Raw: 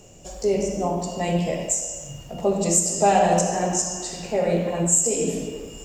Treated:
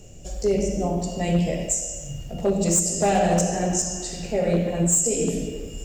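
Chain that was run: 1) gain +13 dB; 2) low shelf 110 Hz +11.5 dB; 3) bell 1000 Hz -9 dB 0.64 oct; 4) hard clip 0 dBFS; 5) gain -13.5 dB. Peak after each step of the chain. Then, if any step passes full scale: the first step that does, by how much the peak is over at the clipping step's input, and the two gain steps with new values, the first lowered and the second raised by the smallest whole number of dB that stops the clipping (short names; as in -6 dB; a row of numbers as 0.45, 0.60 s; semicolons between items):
+7.0, +7.5, +7.0, 0.0, -13.5 dBFS; step 1, 7.0 dB; step 1 +6 dB, step 5 -6.5 dB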